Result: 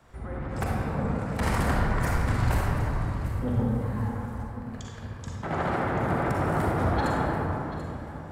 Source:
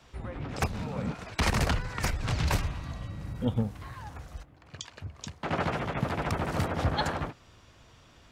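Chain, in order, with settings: high-order bell 3.9 kHz -9.5 dB; saturation -21.5 dBFS, distortion -17 dB; echo whose repeats swap between lows and highs 368 ms, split 1.7 kHz, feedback 57%, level -8 dB; reverberation RT60 2.7 s, pre-delay 40 ms, DRR -3.5 dB

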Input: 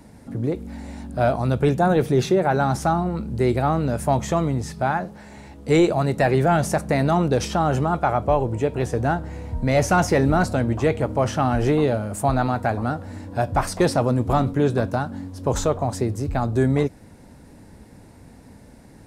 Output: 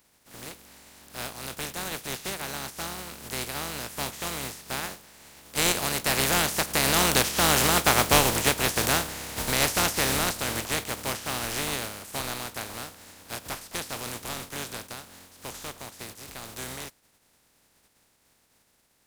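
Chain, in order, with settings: spectral contrast reduction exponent 0.26; Doppler pass-by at 7.96 s, 8 m/s, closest 8.3 m

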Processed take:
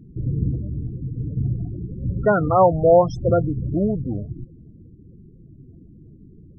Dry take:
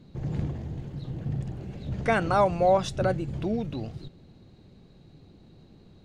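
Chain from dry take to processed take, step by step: high-order bell 3.3 kHz -9.5 dB 1.3 oct; speed mistake 48 kHz file played as 44.1 kHz; loudest bins only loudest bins 16; trim +7.5 dB

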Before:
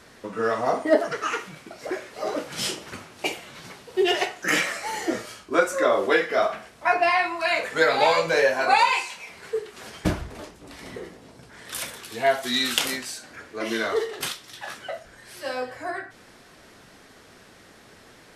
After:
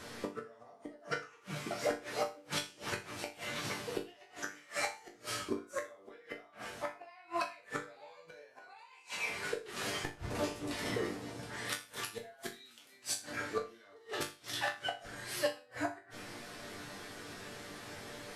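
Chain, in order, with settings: compression 3:1, threshold -30 dBFS, peak gain reduction 13 dB; inverted gate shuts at -24 dBFS, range -30 dB; chord resonator G2 minor, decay 0.31 s; trim +16 dB

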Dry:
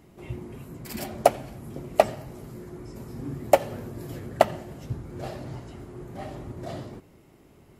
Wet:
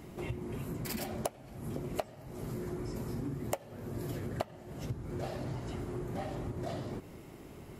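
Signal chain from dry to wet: compression 8:1, threshold -40 dBFS, peak gain reduction 28 dB; trim +5.5 dB

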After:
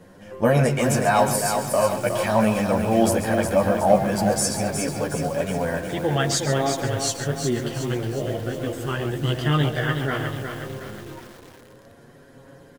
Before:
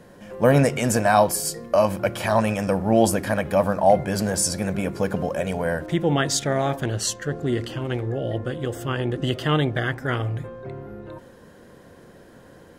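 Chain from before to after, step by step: delay 137 ms -11 dB; chorus voices 2, 0.16 Hz, delay 11 ms, depth 3.9 ms; bit-crushed delay 364 ms, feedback 55%, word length 7-bit, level -6 dB; trim +2 dB

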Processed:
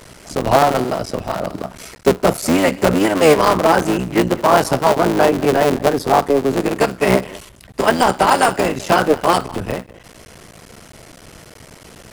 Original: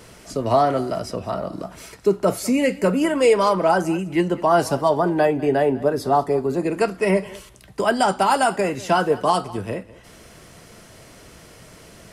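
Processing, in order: cycle switcher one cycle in 3, muted; trim +6 dB

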